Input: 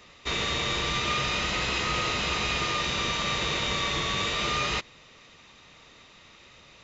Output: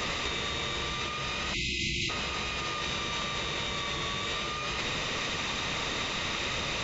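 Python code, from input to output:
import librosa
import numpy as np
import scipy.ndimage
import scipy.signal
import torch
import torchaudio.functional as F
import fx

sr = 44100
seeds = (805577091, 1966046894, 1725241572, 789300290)

y = fx.spec_erase(x, sr, start_s=1.54, length_s=0.56, low_hz=380.0, high_hz=2000.0)
y = fx.over_compress(y, sr, threshold_db=-41.0, ratio=-1.0)
y = y * librosa.db_to_amplitude(9.0)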